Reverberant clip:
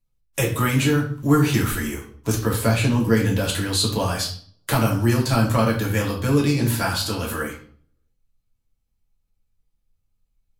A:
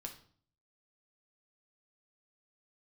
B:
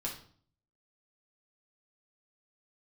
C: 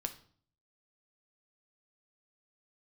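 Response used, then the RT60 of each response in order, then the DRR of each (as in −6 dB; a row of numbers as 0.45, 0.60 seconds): B; 0.50, 0.50, 0.50 seconds; 2.5, −3.0, 6.5 decibels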